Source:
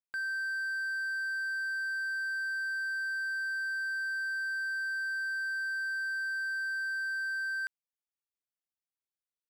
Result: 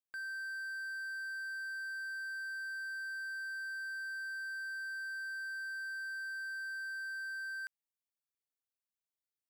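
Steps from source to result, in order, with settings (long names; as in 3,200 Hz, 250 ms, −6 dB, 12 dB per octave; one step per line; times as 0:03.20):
high-shelf EQ 6,900 Hz +6.5 dB
level −7.5 dB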